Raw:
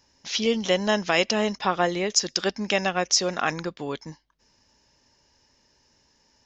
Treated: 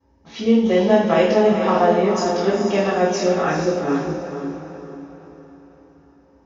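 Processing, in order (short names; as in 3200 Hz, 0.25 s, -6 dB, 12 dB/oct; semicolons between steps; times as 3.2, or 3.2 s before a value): diffused feedback echo 0.451 s, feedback 45%, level -6 dB; reverb RT60 0.70 s, pre-delay 3 ms, DRR -14.5 dB; mismatched tape noise reduction decoder only; gain -17 dB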